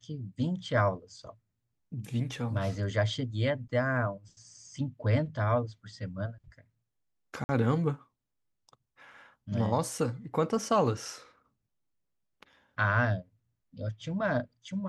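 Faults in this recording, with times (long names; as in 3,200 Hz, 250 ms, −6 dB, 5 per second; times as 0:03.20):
0:07.44–0:07.49: drop-out 50 ms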